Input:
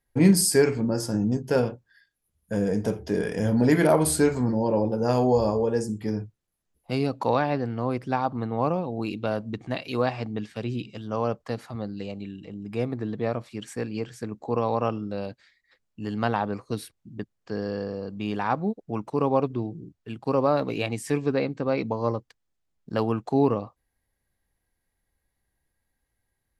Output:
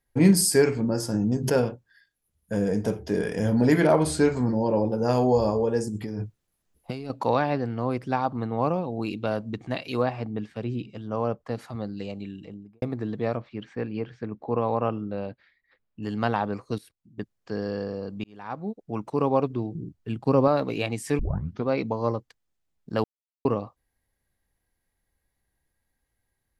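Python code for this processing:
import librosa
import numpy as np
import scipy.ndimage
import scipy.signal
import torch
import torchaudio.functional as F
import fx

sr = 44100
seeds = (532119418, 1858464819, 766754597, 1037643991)

y = fx.pre_swell(x, sr, db_per_s=81.0, at=(1.27, 1.69))
y = fx.lowpass(y, sr, hz=6500.0, slope=12, at=(3.8, 4.37))
y = fx.over_compress(y, sr, threshold_db=-32.0, ratio=-1.0, at=(5.87, 7.1))
y = fx.high_shelf(y, sr, hz=2600.0, db=-10.0, at=(10.03, 11.55))
y = fx.studio_fade_out(y, sr, start_s=12.39, length_s=0.43)
y = fx.bessel_lowpass(y, sr, hz=2600.0, order=4, at=(13.37, 16.03))
y = fx.level_steps(y, sr, step_db=18, at=(16.78, 17.18))
y = fx.low_shelf(y, sr, hz=310.0, db=8.0, at=(19.75, 20.48))
y = fx.edit(y, sr, fx.fade_in_span(start_s=18.24, length_s=0.8),
    fx.tape_start(start_s=21.19, length_s=0.48),
    fx.silence(start_s=23.04, length_s=0.41), tone=tone)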